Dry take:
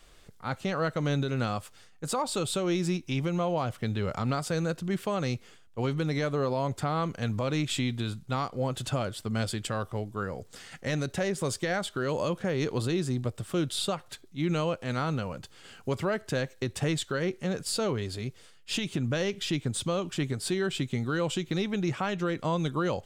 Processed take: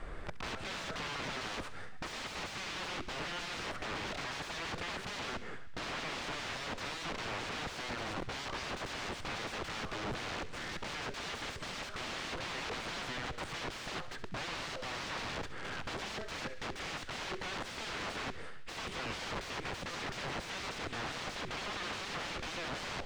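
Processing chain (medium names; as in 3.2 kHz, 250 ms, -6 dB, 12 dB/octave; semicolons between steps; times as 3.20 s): high-order bell 4.3 kHz -12 dB; in parallel at -1 dB: compression, threshold -37 dBFS, peak gain reduction 12.5 dB; on the sum: peak limiter -24.5 dBFS, peak gain reduction 8 dB; integer overflow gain 40.5 dB; distance through air 140 m; on a send: feedback echo behind a high-pass 68 ms, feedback 67%, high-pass 1.4 kHz, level -14.5 dB; on the sum: trim +8.5 dB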